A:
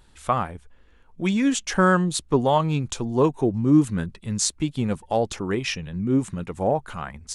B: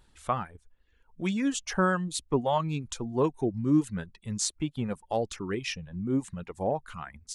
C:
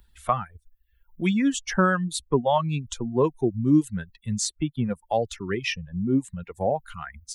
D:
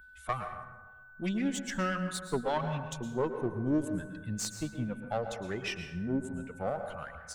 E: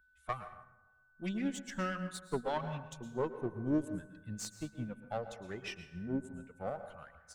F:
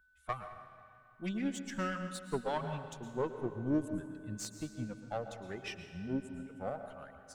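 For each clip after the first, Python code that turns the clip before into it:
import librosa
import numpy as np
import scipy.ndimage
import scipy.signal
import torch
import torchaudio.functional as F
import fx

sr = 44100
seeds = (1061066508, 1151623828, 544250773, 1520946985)

y1 = fx.dereverb_blind(x, sr, rt60_s=0.82)
y1 = y1 * 10.0 ** (-6.0 / 20.0)
y2 = fx.bin_expand(y1, sr, power=1.5)
y2 = fx.band_squash(y2, sr, depth_pct=40)
y2 = y2 * 10.0 ** (7.0 / 20.0)
y3 = fx.diode_clip(y2, sr, knee_db=-23.0)
y3 = fx.rev_plate(y3, sr, seeds[0], rt60_s=1.2, hf_ratio=0.45, predelay_ms=100, drr_db=6.5)
y3 = y3 + 10.0 ** (-45.0 / 20.0) * np.sin(2.0 * np.pi * 1500.0 * np.arange(len(y3)) / sr)
y3 = y3 * 10.0 ** (-7.0 / 20.0)
y4 = fx.upward_expand(y3, sr, threshold_db=-51.0, expansion=1.5)
y4 = y4 * 10.0 ** (-2.0 / 20.0)
y5 = fx.rev_freeverb(y4, sr, rt60_s=2.6, hf_ratio=0.85, predelay_ms=105, drr_db=11.5)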